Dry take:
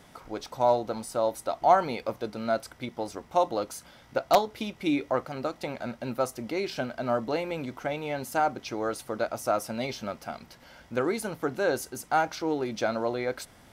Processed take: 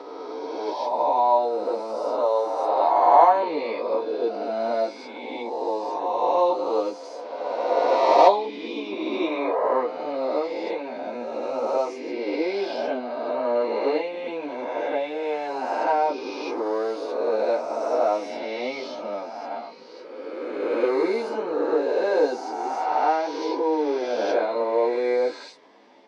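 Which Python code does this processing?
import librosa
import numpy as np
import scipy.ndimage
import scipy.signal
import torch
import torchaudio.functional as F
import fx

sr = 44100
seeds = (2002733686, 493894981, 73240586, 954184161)

y = fx.spec_swells(x, sr, rise_s=1.27)
y = fx.cabinet(y, sr, low_hz=270.0, low_slope=24, high_hz=4700.0, hz=(290.0, 460.0, 940.0, 1400.0, 3200.0), db=(5, 8, 8, -9, -4))
y = fx.stretch_vocoder_free(y, sr, factor=1.9)
y = y * librosa.db_to_amplitude(1.5)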